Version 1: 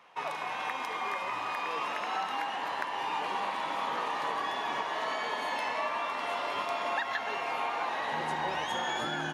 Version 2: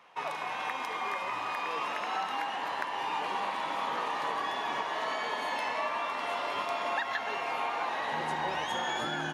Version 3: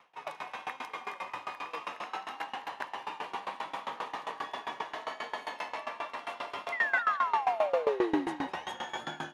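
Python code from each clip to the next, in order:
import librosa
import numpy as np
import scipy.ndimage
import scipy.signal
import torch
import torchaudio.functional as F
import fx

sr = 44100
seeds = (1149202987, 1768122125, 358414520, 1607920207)

y1 = x
y2 = fx.spec_paint(y1, sr, seeds[0], shape='fall', start_s=6.72, length_s=1.55, low_hz=260.0, high_hz=2100.0, level_db=-23.0)
y2 = y2 + 10.0 ** (-8.5 / 20.0) * np.pad(y2, (int(203 * sr / 1000.0), 0))[:len(y2)]
y2 = fx.tremolo_decay(y2, sr, direction='decaying', hz=7.5, depth_db=20)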